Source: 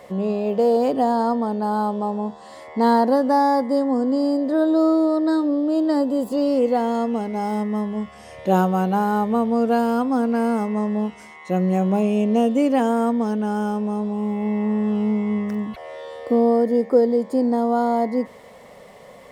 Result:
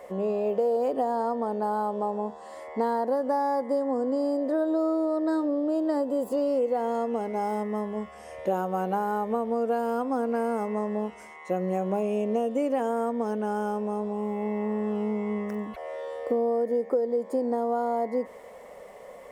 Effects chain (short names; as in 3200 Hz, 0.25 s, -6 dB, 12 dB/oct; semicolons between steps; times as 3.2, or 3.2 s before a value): ten-band EQ 125 Hz -12 dB, 250 Hz -3 dB, 500 Hz +4 dB, 4000 Hz -8 dB; compressor, threshold -20 dBFS, peak gain reduction 11 dB; gain -2.5 dB